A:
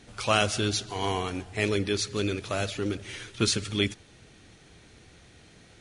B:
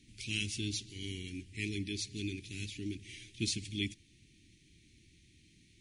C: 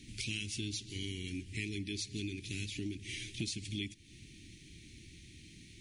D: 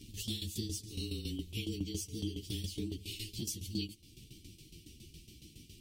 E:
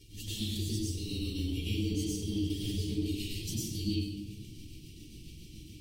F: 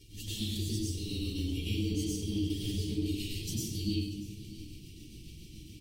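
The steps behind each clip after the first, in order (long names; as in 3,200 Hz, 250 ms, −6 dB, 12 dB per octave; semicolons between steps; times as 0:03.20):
elliptic band-stop filter 330–2,200 Hz, stop band 40 dB; level −8 dB
downward compressor 5 to 1, threshold −46 dBFS, peak gain reduction 14.5 dB; level +9 dB
partials spread apart or drawn together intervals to 111%; shaped tremolo saw down 7.2 Hz, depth 75%; level +7 dB
convolution reverb RT60 1.1 s, pre-delay 93 ms, DRR −7 dB; level −6 dB
single-tap delay 638 ms −18.5 dB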